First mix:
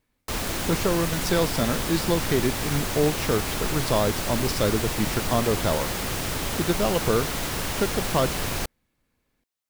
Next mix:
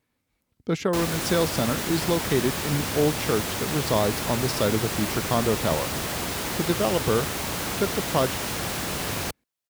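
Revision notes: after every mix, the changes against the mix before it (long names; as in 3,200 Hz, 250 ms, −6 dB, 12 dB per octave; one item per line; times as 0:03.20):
background: entry +0.65 s
master: add high-pass filter 72 Hz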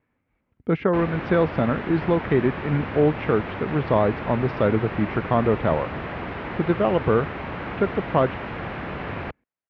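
speech +3.5 dB
master: add inverse Chebyshev low-pass filter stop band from 9,200 Hz, stop band 70 dB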